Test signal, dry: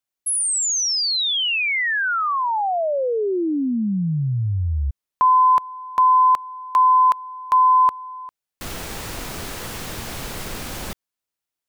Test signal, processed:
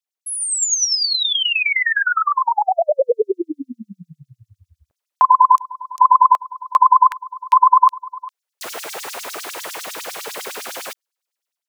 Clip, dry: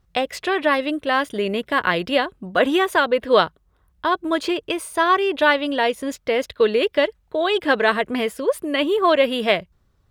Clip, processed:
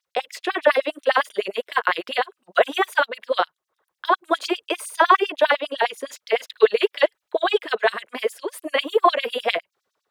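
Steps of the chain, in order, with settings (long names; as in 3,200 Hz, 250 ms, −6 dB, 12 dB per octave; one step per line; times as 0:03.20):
automatic gain control gain up to 8 dB
dynamic equaliser 4,800 Hz, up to −3 dB, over −31 dBFS, Q 0.76
auto-filter high-pass sine 9.9 Hz 420–6,300 Hz
level −5.5 dB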